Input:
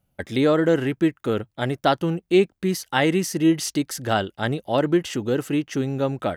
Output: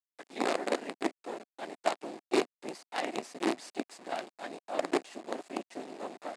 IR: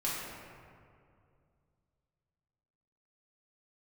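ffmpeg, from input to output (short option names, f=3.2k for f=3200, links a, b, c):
-af "afftfilt=real='hypot(re,im)*cos(2*PI*random(0))':imag='hypot(re,im)*sin(2*PI*random(1))':win_size=512:overlap=0.75,acrusher=bits=4:dc=4:mix=0:aa=0.000001,highpass=f=260:w=0.5412,highpass=f=260:w=1.3066,equalizer=f=470:t=q:w=4:g=-3,equalizer=f=710:t=q:w=4:g=6,equalizer=f=1.4k:t=q:w=4:g=-4,equalizer=f=3.2k:t=q:w=4:g=-5,equalizer=f=5.9k:t=q:w=4:g=-7,lowpass=f=8.4k:w=0.5412,lowpass=f=8.4k:w=1.3066,volume=-5dB"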